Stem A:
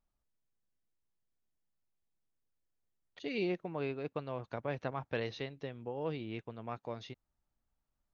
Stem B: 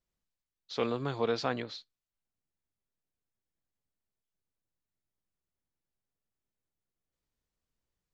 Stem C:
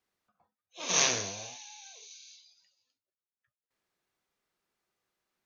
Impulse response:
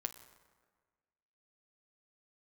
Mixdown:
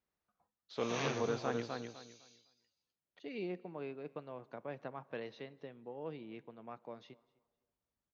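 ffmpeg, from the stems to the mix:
-filter_complex "[0:a]highpass=f=150:w=0.5412,highpass=f=150:w=1.3066,volume=0.355,asplit=3[s0][s1][s2];[s1]volume=0.473[s3];[s2]volume=0.0708[s4];[1:a]highpass=48,volume=0.531,asplit=2[s5][s6];[s6]volume=0.596[s7];[2:a]volume=0.376,asplit=2[s8][s9];[s9]volume=0.282[s10];[3:a]atrim=start_sample=2205[s11];[s3][s10]amix=inputs=2:normalize=0[s12];[s12][s11]afir=irnorm=-1:irlink=0[s13];[s4][s7]amix=inputs=2:normalize=0,aecho=0:1:253|506|759|1012:1|0.23|0.0529|0.0122[s14];[s0][s5][s8][s13][s14]amix=inputs=5:normalize=0,acrossover=split=3800[s15][s16];[s16]acompressor=threshold=0.00447:ratio=4:attack=1:release=60[s17];[s15][s17]amix=inputs=2:normalize=0,highshelf=f=3000:g=-7.5"

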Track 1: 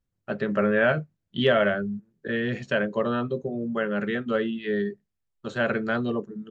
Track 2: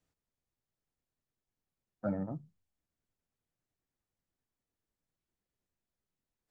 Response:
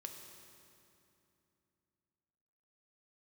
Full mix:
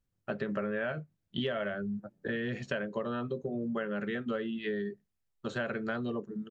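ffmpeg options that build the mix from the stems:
-filter_complex "[0:a]volume=0.891,asplit=2[s0][s1];[1:a]volume=0.398[s2];[s1]apad=whole_len=291065[s3];[s2][s3]sidechaingate=range=0.0224:threshold=0.00631:ratio=16:detection=peak[s4];[s0][s4]amix=inputs=2:normalize=0,acompressor=threshold=0.0282:ratio=6"

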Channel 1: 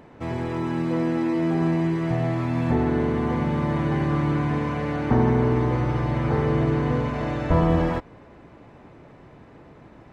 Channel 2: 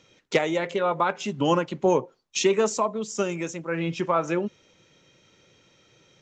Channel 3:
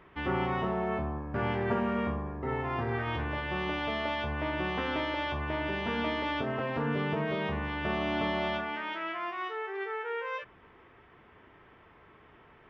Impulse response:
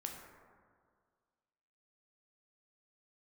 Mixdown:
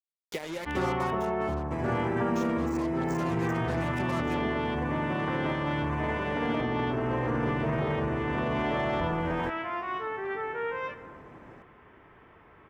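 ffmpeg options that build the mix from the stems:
-filter_complex "[0:a]lowshelf=f=170:g=-6,adelay=1500,volume=0.891[s0];[1:a]acompressor=threshold=0.0562:ratio=4,acrusher=bits=4:mix=0:aa=0.5,volume=1.12,afade=t=out:st=0.82:d=0.49:silence=0.266073,afade=t=in:st=2.52:d=0.6:silence=0.375837[s1];[2:a]adelay=500,volume=0.944,asplit=2[s2][s3];[s3]volume=0.596[s4];[s0][s2]amix=inputs=2:normalize=0,equalizer=f=3900:w=1.4:g=-9.5,alimiter=limit=0.0668:level=0:latency=1:release=23,volume=1[s5];[3:a]atrim=start_sample=2205[s6];[s4][s6]afir=irnorm=-1:irlink=0[s7];[s1][s5][s7]amix=inputs=3:normalize=0"

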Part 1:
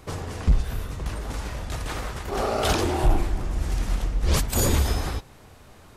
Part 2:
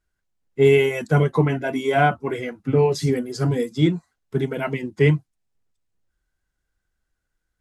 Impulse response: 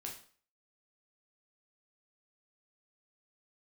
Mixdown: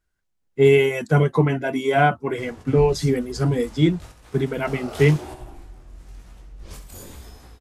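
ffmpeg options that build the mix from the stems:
-filter_complex "[0:a]flanger=delay=16:depth=7.5:speed=1,adynamicequalizer=threshold=0.00562:dfrequency=6400:dqfactor=0.7:tfrequency=6400:tqfactor=0.7:attack=5:release=100:ratio=0.375:range=2:mode=boostabove:tftype=highshelf,adelay=2300,volume=0.355,asplit=2[s0][s1];[s1]volume=0.447[s2];[1:a]volume=1.06,asplit=2[s3][s4];[s4]apad=whole_len=364309[s5];[s0][s5]sidechaingate=range=0.0224:threshold=0.00891:ratio=16:detection=peak[s6];[s2]aecho=0:1:67|134|201|268|335:1|0.33|0.109|0.0359|0.0119[s7];[s6][s3][s7]amix=inputs=3:normalize=0"

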